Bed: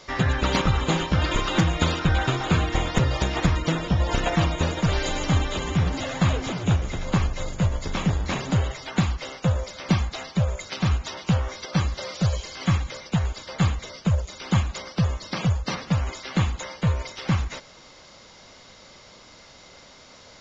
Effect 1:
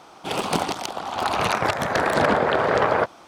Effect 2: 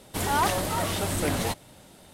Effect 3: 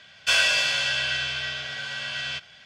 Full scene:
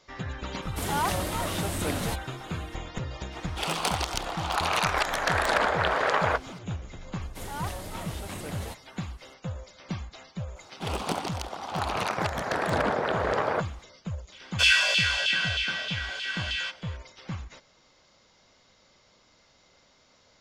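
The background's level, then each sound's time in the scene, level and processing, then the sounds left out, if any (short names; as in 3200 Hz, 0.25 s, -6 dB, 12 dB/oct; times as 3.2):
bed -13 dB
0.62 add 2 -3.5 dB
3.32 add 1 + HPF 1200 Hz 6 dB/oct
7.21 add 2 -12 dB
10.56 add 1 -7 dB
14.32 add 3 -3.5 dB + LFO high-pass saw down 3.2 Hz 390–3300 Hz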